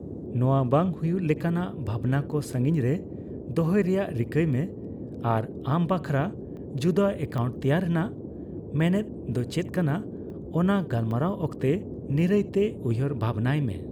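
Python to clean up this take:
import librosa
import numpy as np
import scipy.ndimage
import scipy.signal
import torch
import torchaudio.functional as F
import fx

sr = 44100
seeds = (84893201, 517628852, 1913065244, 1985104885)

y = fx.fix_interpolate(x, sr, at_s=(6.57, 7.38, 10.3, 11.11), length_ms=1.1)
y = fx.noise_reduce(y, sr, print_start_s=8.15, print_end_s=8.65, reduce_db=30.0)
y = fx.fix_echo_inverse(y, sr, delay_ms=74, level_db=-23.0)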